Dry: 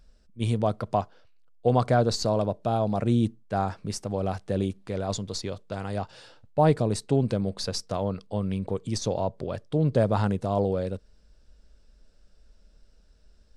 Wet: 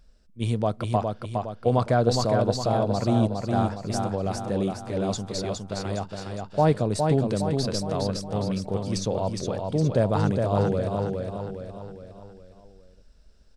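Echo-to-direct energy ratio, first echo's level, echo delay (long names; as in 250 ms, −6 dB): −3.0 dB, −4.0 dB, 412 ms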